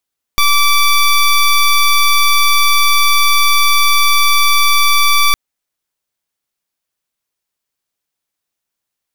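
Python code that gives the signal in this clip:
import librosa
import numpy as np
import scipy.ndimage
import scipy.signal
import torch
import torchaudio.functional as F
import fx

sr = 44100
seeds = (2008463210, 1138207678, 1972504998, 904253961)

y = fx.pulse(sr, length_s=4.96, hz=1160.0, level_db=-9.5, duty_pct=15)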